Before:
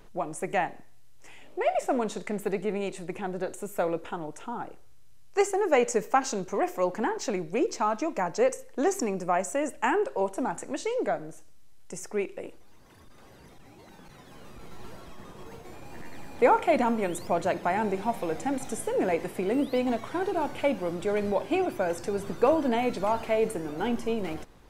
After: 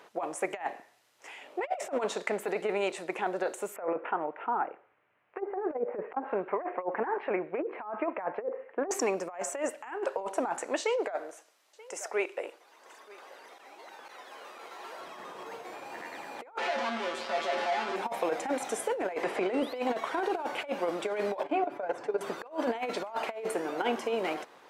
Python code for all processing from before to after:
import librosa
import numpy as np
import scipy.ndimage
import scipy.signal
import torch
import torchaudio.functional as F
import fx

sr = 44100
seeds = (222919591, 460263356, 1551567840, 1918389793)

y = fx.chain(x, sr, fx.env_lowpass_down(base_hz=390.0, full_db=-18.5),
    fx.steep_lowpass(hz=2500.0, slope=36), at=(3.76, 8.91))
y = fx.chain(y, sr, fx.highpass(hz=380.0, slope=12),
    fx.echo_single(ms=932, db=-23.0), at=(10.8, 15.0))
y = fx.chain(y, sr, fx.clip_1bit(),
    fx.lowpass(hz=4700.0, slope=12),
    fx.comb_fb(f0_hz=77.0, decay_s=0.22, harmonics='odd', damping=0.0, mix_pct=90), at=(16.58, 17.96))
y = fx.chain(y, sr, fx.lowpass(hz=7100.0, slope=12),
    fx.band_squash(depth_pct=70), at=(19.23, 19.63))
y = fx.chain(y, sr, fx.lowpass(hz=1100.0, slope=6),
    fx.level_steps(step_db=14),
    fx.comb(ms=7.0, depth=0.51), at=(21.43, 22.21))
y = scipy.signal.sosfilt(scipy.signal.butter(2, 550.0, 'highpass', fs=sr, output='sos'), y)
y = fx.high_shelf(y, sr, hz=4800.0, db=-11.0)
y = fx.over_compress(y, sr, threshold_db=-34.0, ratio=-0.5)
y = F.gain(torch.from_numpy(y), 4.0).numpy()